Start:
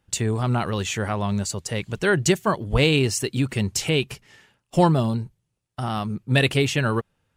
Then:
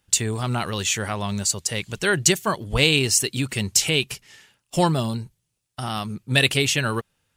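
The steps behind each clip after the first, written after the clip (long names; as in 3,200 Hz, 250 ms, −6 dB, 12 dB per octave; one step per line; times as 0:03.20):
high-shelf EQ 2,300 Hz +12 dB
level −3 dB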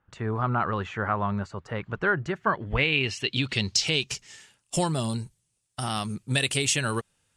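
downward compressor 4 to 1, threshold −21 dBFS, peak gain reduction 8 dB
low-pass filter sweep 1,300 Hz → 8,900 Hz, 0:02.24–0:04.50
level −1.5 dB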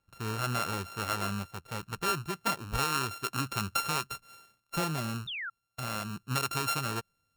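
samples sorted by size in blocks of 32 samples
sound drawn into the spectrogram fall, 0:05.27–0:05.50, 1,300–3,800 Hz −31 dBFS
level −6 dB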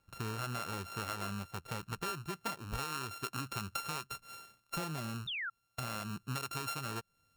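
downward compressor 4 to 1, threshold −42 dBFS, peak gain reduction 14 dB
level +4 dB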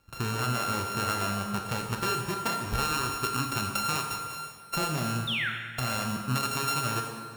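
dense smooth reverb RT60 1.8 s, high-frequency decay 0.8×, DRR 1.5 dB
level +7.5 dB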